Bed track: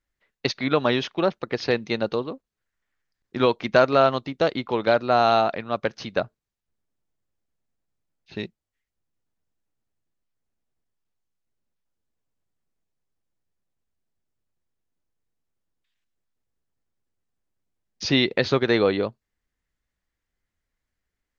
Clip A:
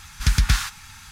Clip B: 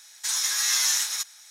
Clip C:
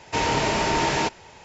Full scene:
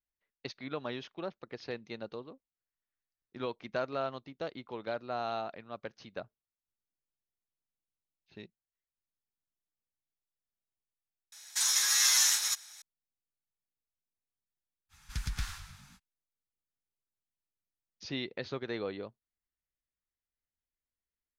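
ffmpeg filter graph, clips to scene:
-filter_complex "[0:a]volume=-17dB[a];[1:a]asplit=8[b][c][d][e][f][g][h][i];[c]adelay=102,afreqshift=-46,volume=-10dB[j];[d]adelay=204,afreqshift=-92,volume=-14.9dB[k];[e]adelay=306,afreqshift=-138,volume=-19.8dB[l];[f]adelay=408,afreqshift=-184,volume=-24.6dB[m];[g]adelay=510,afreqshift=-230,volume=-29.5dB[n];[h]adelay=612,afreqshift=-276,volume=-34.4dB[o];[i]adelay=714,afreqshift=-322,volume=-39.3dB[p];[b][j][k][l][m][n][o][p]amix=inputs=8:normalize=0[q];[2:a]atrim=end=1.5,asetpts=PTS-STARTPTS,volume=-2dB,afade=t=in:d=0.004:c=hsin,afade=t=out:st=1.496:d=0.004:c=hsin,adelay=11320[r];[q]atrim=end=1.11,asetpts=PTS-STARTPTS,volume=-17.5dB,afade=t=in:d=0.05,afade=t=out:st=1.06:d=0.05,adelay=14890[s];[a][r][s]amix=inputs=3:normalize=0"

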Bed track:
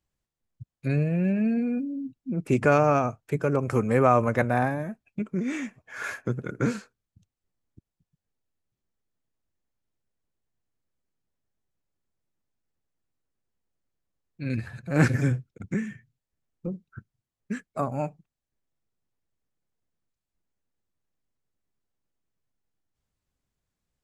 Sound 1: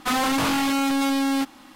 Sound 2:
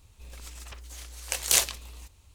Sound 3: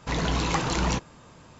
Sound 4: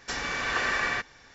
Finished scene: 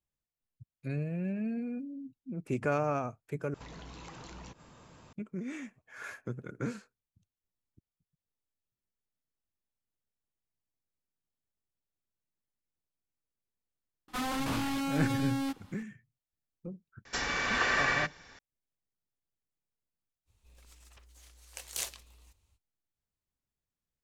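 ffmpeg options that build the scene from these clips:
-filter_complex "[0:a]volume=-10dB[a];[3:a]acompressor=threshold=-40dB:ratio=6:attack=3.2:release=140:knee=1:detection=peak[b];[1:a]lowshelf=f=150:g=10.5[c];[a]asplit=2[d][e];[d]atrim=end=3.544[f];[b]atrim=end=1.59,asetpts=PTS-STARTPTS,volume=-5.5dB[g];[e]atrim=start=5.126[h];[c]atrim=end=1.75,asetpts=PTS-STARTPTS,volume=-12.5dB,afade=t=in:d=0.004:c=hsin,afade=t=out:st=1.746:d=0.004:c=hsin,adelay=14080[i];[4:a]atrim=end=1.34,asetpts=PTS-STARTPTS,volume=-1dB,afade=t=in:d=0.004:c=hsin,afade=t=out:st=1.336:d=0.004:c=hsin,adelay=17050[j];[2:a]atrim=end=2.34,asetpts=PTS-STARTPTS,volume=-14.5dB,afade=t=in:d=0.05,afade=t=out:st=2.29:d=0.05,adelay=20250[k];[f][g]acrossfade=d=0.004:c1=hsin:c2=hsin[l];[l][h]acrossfade=d=0.004:c1=hsin:c2=hsin[m];[m][i][j][k]amix=inputs=4:normalize=0"

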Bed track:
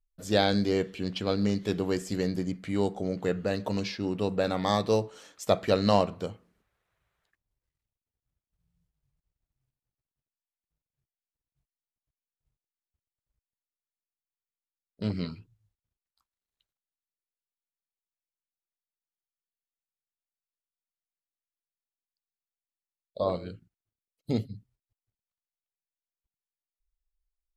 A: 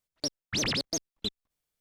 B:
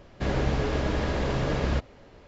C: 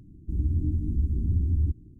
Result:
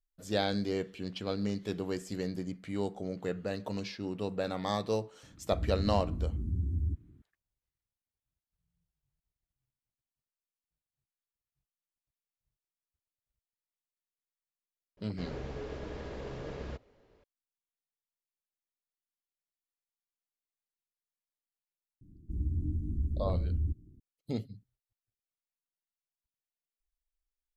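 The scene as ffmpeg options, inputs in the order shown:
-filter_complex "[3:a]asplit=2[a][b];[0:a]volume=-6.5dB[c];[a]highpass=46[d];[2:a]equalizer=f=430:w=2.5:g=6.5[e];[d]atrim=end=1.99,asetpts=PTS-STARTPTS,volume=-7dB,afade=t=in:d=0.004:c=hsin,afade=t=out:st=1.986:d=0.004:c=hsin,adelay=5230[f];[e]atrim=end=2.27,asetpts=PTS-STARTPTS,volume=-16dB,afade=t=in:d=0.004:c=hsin,afade=t=out:st=2.266:d=0.004:c=hsin,adelay=14970[g];[b]atrim=end=1.99,asetpts=PTS-STARTPTS,volume=-7dB,afade=t=in:d=0.004:c=hsin,afade=t=out:st=1.986:d=0.004:c=hsin,adelay=22010[h];[c][f][g][h]amix=inputs=4:normalize=0"

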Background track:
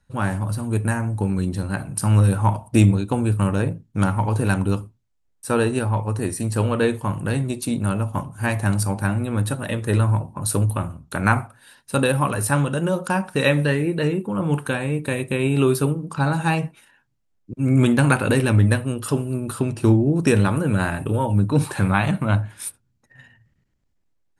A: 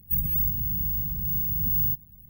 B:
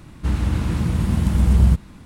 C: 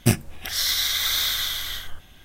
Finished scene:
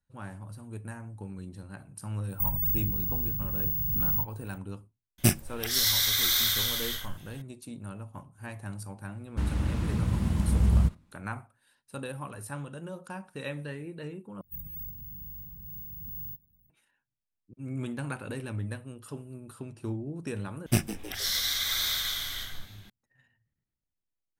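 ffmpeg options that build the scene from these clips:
-filter_complex "[1:a]asplit=2[a][b];[3:a]asplit=2[c][d];[0:a]volume=-18.5dB[e];[a]asuperstop=centerf=3000:order=20:qfactor=1.2[f];[c]highshelf=f=7k:g=7.5[g];[2:a]agate=range=-16dB:threshold=-34dB:ratio=16:release=100:detection=peak[h];[d]asplit=5[i][j][k][l][m];[j]adelay=156,afreqshift=96,volume=-13.5dB[n];[k]adelay=312,afreqshift=192,volume=-20.2dB[o];[l]adelay=468,afreqshift=288,volume=-27dB[p];[m]adelay=624,afreqshift=384,volume=-33.7dB[q];[i][n][o][p][q]amix=inputs=5:normalize=0[r];[e]asplit=3[s][t][u];[s]atrim=end=14.414[v];[b]atrim=end=2.29,asetpts=PTS-STARTPTS,volume=-15.5dB[w];[t]atrim=start=16.696:end=20.664[x];[r]atrim=end=2.24,asetpts=PTS-STARTPTS,volume=-6dB[y];[u]atrim=start=22.896[z];[f]atrim=end=2.29,asetpts=PTS-STARTPTS,volume=-3dB,afade=t=in:d=0.004:c=hsin,afade=t=out:st=2.286:d=0.004:c=hsin,adelay=2290[aa];[g]atrim=end=2.24,asetpts=PTS-STARTPTS,volume=-4.5dB,afade=t=in:d=0.004:c=hsin,afade=t=out:st=2.236:d=0.004:c=hsin,adelay=5180[ab];[h]atrim=end=2.05,asetpts=PTS-STARTPTS,volume=-8dB,afade=t=in:d=0.004:c=hsin,afade=t=out:st=2.046:d=0.004:c=hsin,adelay=9130[ac];[v][w]acrossfade=d=0.004:c1=hsin:c2=hsin[ad];[ad][x]acrossfade=d=0.004:c1=hsin:c2=hsin[ae];[ae][y]acrossfade=d=0.004:c1=hsin:c2=hsin[af];[af][z]acrossfade=d=0.004:c1=hsin:c2=hsin[ag];[ag][aa][ab][ac]amix=inputs=4:normalize=0"

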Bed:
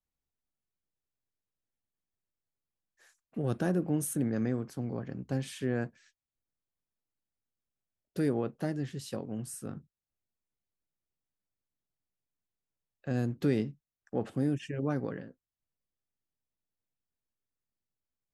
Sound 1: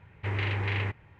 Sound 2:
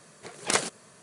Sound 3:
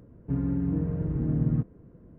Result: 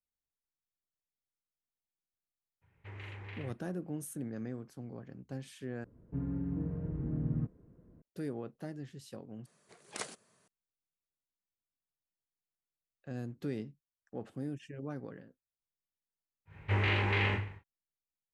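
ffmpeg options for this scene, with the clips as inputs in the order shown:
-filter_complex "[1:a]asplit=2[a][b];[0:a]volume=-9.5dB[c];[2:a]aresample=32000,aresample=44100[d];[b]aecho=1:1:20|45|76.25|115.3|164.1|225.2:0.631|0.398|0.251|0.158|0.1|0.0631[e];[c]asplit=3[f][g][h];[f]atrim=end=5.844[i];[3:a]atrim=end=2.18,asetpts=PTS-STARTPTS,volume=-8.5dB[j];[g]atrim=start=8.016:end=9.464[k];[d]atrim=end=1.02,asetpts=PTS-STARTPTS,volume=-16dB[l];[h]atrim=start=10.476[m];[a]atrim=end=1.19,asetpts=PTS-STARTPTS,volume=-16.5dB,afade=t=in:d=0.02,afade=t=out:st=1.17:d=0.02,adelay=2610[n];[e]atrim=end=1.19,asetpts=PTS-STARTPTS,volume=-0.5dB,afade=t=in:d=0.1,afade=t=out:st=1.09:d=0.1,adelay=16450[o];[i][j]acrossfade=d=0.004:c1=hsin:c2=hsin[p];[p][k]acrossfade=d=0.004:c1=hsin:c2=hsin[q];[q][l]acrossfade=d=0.004:c1=hsin:c2=hsin[r];[r][m]acrossfade=d=0.004:c1=hsin:c2=hsin[s];[s][n][o]amix=inputs=3:normalize=0"

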